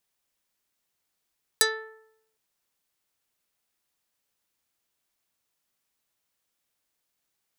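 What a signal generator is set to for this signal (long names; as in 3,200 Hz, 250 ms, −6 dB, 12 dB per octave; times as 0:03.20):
Karplus-Strong string A4, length 0.76 s, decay 0.78 s, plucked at 0.41, dark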